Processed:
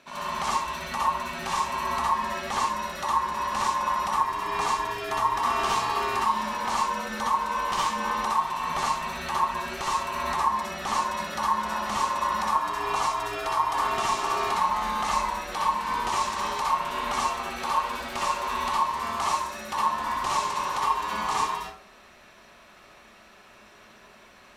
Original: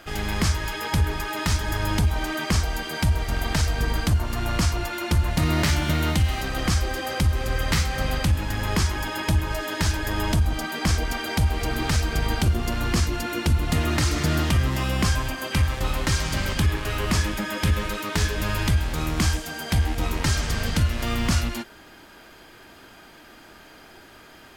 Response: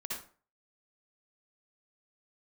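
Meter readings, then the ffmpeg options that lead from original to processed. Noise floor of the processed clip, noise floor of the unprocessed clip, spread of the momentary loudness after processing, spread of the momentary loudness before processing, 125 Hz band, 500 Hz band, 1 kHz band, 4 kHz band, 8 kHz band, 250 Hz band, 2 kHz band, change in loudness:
-53 dBFS, -48 dBFS, 4 LU, 4 LU, -23.5 dB, -3.5 dB, +8.5 dB, -5.0 dB, -5.0 dB, -12.5 dB, -4.0 dB, -2.5 dB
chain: -filter_complex "[0:a]lowpass=11k,aeval=exprs='val(0)*sin(2*PI*1000*n/s)':c=same[a];[1:a]atrim=start_sample=2205[b];[a][b]afir=irnorm=-1:irlink=0,volume=-2dB"

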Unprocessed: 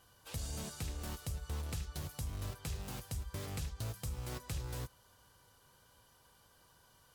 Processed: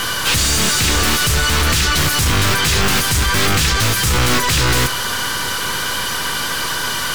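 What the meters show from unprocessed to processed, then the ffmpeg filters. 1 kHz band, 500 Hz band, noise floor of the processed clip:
+33.0 dB, +27.0 dB, -21 dBFS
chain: -filter_complex "[0:a]asplit=2[a][b];[b]highpass=f=720:p=1,volume=35dB,asoftclip=type=tanh:threshold=-29.5dB[c];[a][c]amix=inputs=2:normalize=0,lowpass=f=3.7k:p=1,volume=-6dB,apsyclip=35dB,acrossover=split=450|1000[d][e][f];[e]aeval=exprs='abs(val(0))':c=same[g];[d][g][f]amix=inputs=3:normalize=0,volume=-10.5dB"

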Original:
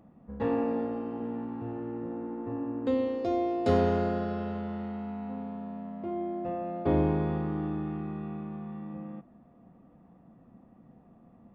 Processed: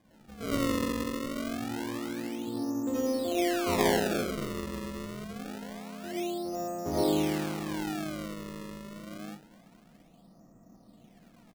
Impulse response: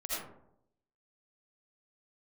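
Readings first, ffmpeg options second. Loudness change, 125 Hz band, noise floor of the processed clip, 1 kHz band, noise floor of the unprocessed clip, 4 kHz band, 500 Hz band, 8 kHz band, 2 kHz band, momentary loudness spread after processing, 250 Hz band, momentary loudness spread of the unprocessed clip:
-0.5 dB, -5.5 dB, -59 dBFS, -0.5 dB, -58 dBFS, +14.0 dB, -1.0 dB, n/a, +8.0 dB, 15 LU, -0.5 dB, 13 LU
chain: -filter_complex "[0:a]asplit=2[a][b];[b]adelay=215.7,volume=-18dB,highshelf=f=4k:g=-4.85[c];[a][c]amix=inputs=2:normalize=0[d];[1:a]atrim=start_sample=2205,afade=t=out:st=0.26:d=0.01,atrim=end_sample=11907[e];[d][e]afir=irnorm=-1:irlink=0,acrusher=samples=32:mix=1:aa=0.000001:lfo=1:lforange=51.2:lforate=0.26,volume=-3.5dB"

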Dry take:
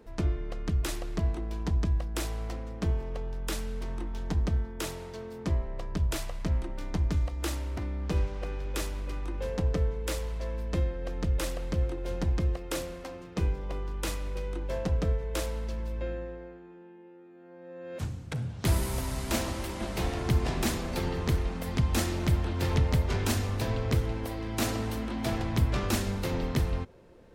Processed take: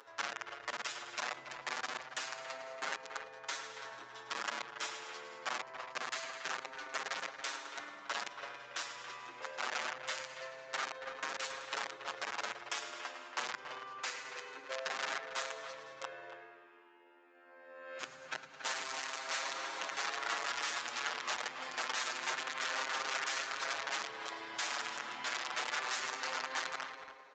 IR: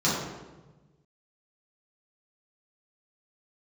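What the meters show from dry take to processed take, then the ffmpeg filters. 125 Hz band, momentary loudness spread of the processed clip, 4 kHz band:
under -40 dB, 10 LU, +0.5 dB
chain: -filter_complex "[0:a]tremolo=f=78:d=0.824,acompressor=mode=upward:threshold=-53dB:ratio=2.5,aecho=1:1:7.4:0.43,asplit=2[a][b];[b]aecho=0:1:106|212|318|424|530|636:0.316|0.177|0.0992|0.0555|0.0311|0.0174[c];[a][c]amix=inputs=2:normalize=0,aeval=exprs='(mod(18.8*val(0)+1,2)-1)/18.8':c=same,acompressor=threshold=-35dB:ratio=6,highpass=840,equalizer=f=1.5k:w=1.1:g=5.5,asplit=2[d][e];[e]adelay=280,highpass=300,lowpass=3.4k,asoftclip=type=hard:threshold=-30.5dB,volume=-9dB[f];[d][f]amix=inputs=2:normalize=0,aresample=16000,aresample=44100,asplit=2[g][h];[h]adelay=6.8,afreqshift=0.25[i];[g][i]amix=inputs=2:normalize=1,volume=5.5dB"

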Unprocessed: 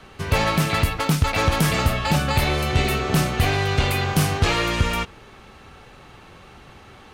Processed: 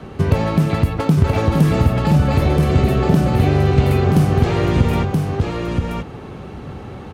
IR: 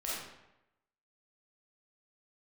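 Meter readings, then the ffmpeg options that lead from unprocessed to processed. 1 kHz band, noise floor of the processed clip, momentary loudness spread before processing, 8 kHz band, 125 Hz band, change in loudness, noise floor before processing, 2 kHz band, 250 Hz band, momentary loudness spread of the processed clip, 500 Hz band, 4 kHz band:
+0.5 dB, -34 dBFS, 2 LU, n/a, +8.0 dB, +4.5 dB, -46 dBFS, -4.5 dB, +8.5 dB, 18 LU, +6.0 dB, -6.5 dB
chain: -af "highpass=57,lowshelf=f=120:g=-4,acompressor=threshold=-28dB:ratio=4,tiltshelf=f=780:g=9.5,aecho=1:1:977:0.631,volume=8.5dB"

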